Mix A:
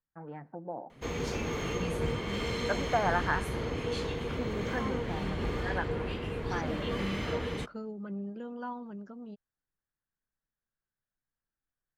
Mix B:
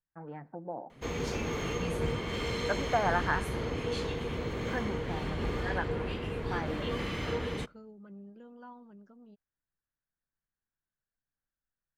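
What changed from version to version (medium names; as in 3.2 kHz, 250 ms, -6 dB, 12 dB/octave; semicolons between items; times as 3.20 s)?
second voice -10.5 dB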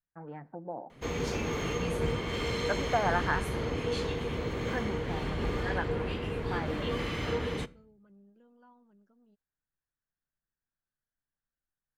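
second voice -10.5 dB; background: send +10.0 dB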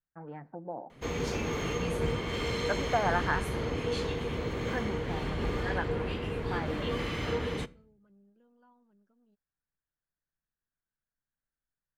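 second voice -4.0 dB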